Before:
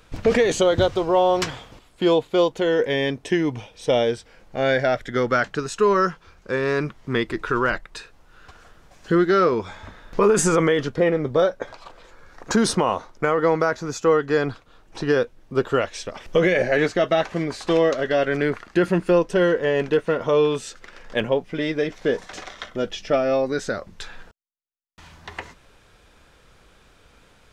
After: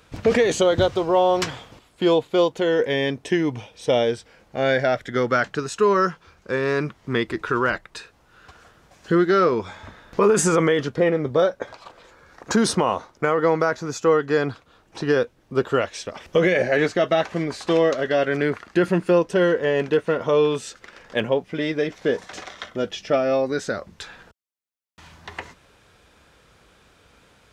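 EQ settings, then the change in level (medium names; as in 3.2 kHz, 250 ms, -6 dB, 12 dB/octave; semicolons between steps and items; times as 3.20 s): high-pass 57 Hz; 0.0 dB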